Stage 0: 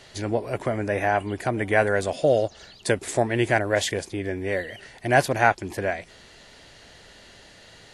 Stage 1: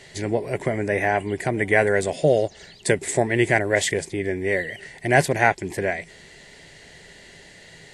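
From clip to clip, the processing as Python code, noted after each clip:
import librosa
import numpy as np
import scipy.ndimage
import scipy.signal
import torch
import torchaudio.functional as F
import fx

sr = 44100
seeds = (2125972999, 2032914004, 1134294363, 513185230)

y = fx.graphic_eq_31(x, sr, hz=(160, 400, 1250, 2000, 8000), db=(10, 6, -8, 9, 8))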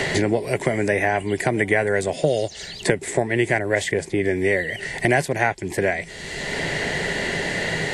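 y = fx.band_squash(x, sr, depth_pct=100)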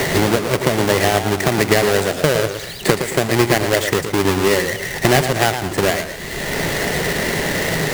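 y = fx.halfwave_hold(x, sr)
y = fx.echo_warbled(y, sr, ms=113, feedback_pct=35, rate_hz=2.8, cents=120, wet_db=-8.5)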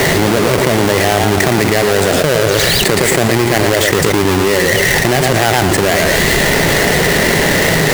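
y = fx.env_flatten(x, sr, amount_pct=100)
y = y * 10.0 ** (-1.5 / 20.0)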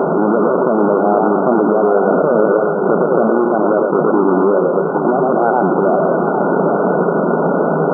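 y = fx.brickwall_bandpass(x, sr, low_hz=160.0, high_hz=1500.0)
y = y + 10.0 ** (-6.0 / 20.0) * np.pad(y, (int(807 * sr / 1000.0), 0))[:len(y)]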